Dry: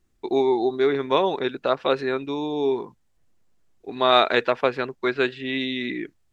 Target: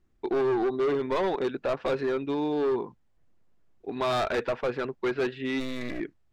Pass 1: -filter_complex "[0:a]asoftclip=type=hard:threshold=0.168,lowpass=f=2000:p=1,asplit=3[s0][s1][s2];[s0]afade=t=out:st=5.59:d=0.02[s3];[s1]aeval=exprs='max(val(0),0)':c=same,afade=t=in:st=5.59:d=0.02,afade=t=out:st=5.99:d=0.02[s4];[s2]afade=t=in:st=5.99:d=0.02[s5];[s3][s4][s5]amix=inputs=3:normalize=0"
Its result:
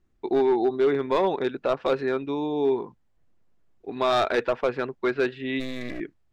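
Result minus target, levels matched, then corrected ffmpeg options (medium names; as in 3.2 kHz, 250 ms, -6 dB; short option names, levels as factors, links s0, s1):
hard clipper: distortion -5 dB
-filter_complex "[0:a]asoftclip=type=hard:threshold=0.075,lowpass=f=2000:p=1,asplit=3[s0][s1][s2];[s0]afade=t=out:st=5.59:d=0.02[s3];[s1]aeval=exprs='max(val(0),0)':c=same,afade=t=in:st=5.59:d=0.02,afade=t=out:st=5.99:d=0.02[s4];[s2]afade=t=in:st=5.99:d=0.02[s5];[s3][s4][s5]amix=inputs=3:normalize=0"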